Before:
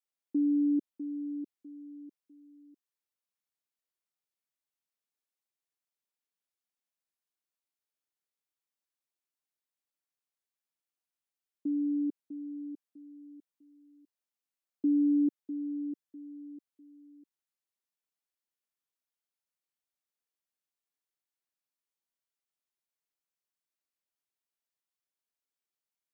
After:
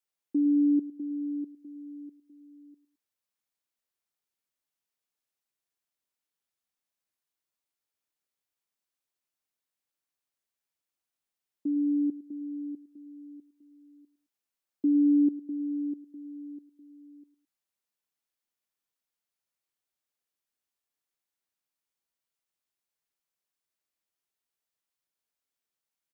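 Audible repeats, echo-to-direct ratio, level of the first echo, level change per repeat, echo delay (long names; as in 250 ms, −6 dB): 2, −16.0 dB, −17.0 dB, −7.0 dB, 107 ms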